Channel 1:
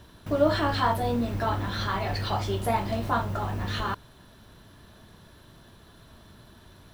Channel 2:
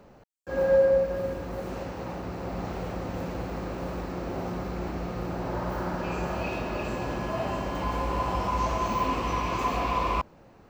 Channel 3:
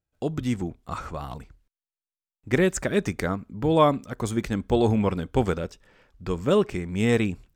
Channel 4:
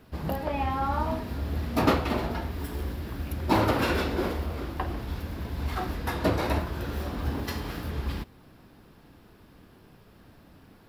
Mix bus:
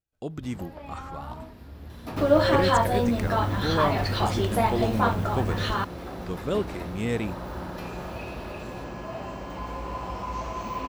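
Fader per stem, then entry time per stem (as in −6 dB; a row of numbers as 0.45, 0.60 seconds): +2.5, −5.5, −6.5, −12.0 decibels; 1.90, 1.75, 0.00, 0.30 seconds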